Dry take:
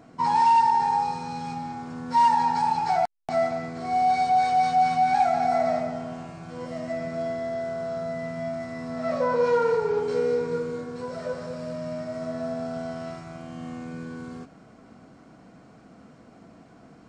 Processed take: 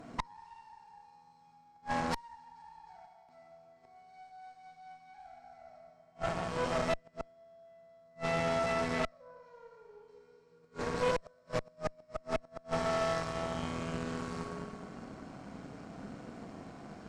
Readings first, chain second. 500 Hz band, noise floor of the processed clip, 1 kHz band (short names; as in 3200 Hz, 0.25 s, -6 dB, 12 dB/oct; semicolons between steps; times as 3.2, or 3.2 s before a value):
-10.5 dB, -64 dBFS, -18.0 dB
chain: Schroeder reverb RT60 1.9 s, combs from 30 ms, DRR 0 dB; flipped gate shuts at -22 dBFS, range -34 dB; added harmonics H 6 -12 dB, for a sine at -20.5 dBFS